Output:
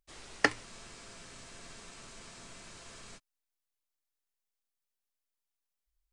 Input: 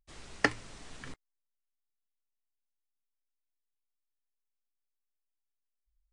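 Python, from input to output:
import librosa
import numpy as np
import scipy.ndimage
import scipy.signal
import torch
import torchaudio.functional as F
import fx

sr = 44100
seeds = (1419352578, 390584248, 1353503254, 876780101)

y = fx.bass_treble(x, sr, bass_db=-6, treble_db=2)
y = fx.spec_freeze(y, sr, seeds[0], at_s=0.67, hold_s=2.51)
y = F.gain(torch.from_numpy(y), 1.0).numpy()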